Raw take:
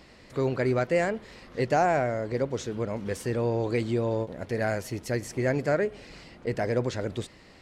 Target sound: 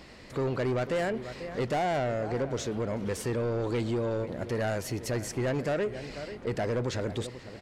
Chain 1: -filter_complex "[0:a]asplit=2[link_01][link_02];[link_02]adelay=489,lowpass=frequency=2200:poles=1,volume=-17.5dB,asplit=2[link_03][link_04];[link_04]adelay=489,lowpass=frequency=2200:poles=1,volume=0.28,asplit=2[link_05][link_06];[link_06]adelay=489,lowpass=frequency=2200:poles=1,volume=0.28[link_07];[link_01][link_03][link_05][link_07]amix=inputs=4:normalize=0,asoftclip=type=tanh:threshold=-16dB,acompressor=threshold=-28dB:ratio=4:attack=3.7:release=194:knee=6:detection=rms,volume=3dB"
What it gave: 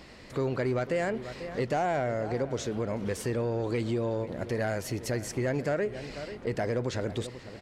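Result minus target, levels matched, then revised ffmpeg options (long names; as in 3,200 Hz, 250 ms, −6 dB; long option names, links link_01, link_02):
soft clipping: distortion −11 dB
-filter_complex "[0:a]asplit=2[link_01][link_02];[link_02]adelay=489,lowpass=frequency=2200:poles=1,volume=-17.5dB,asplit=2[link_03][link_04];[link_04]adelay=489,lowpass=frequency=2200:poles=1,volume=0.28,asplit=2[link_05][link_06];[link_06]adelay=489,lowpass=frequency=2200:poles=1,volume=0.28[link_07];[link_01][link_03][link_05][link_07]amix=inputs=4:normalize=0,asoftclip=type=tanh:threshold=-24.5dB,acompressor=threshold=-28dB:ratio=4:attack=3.7:release=194:knee=6:detection=rms,volume=3dB"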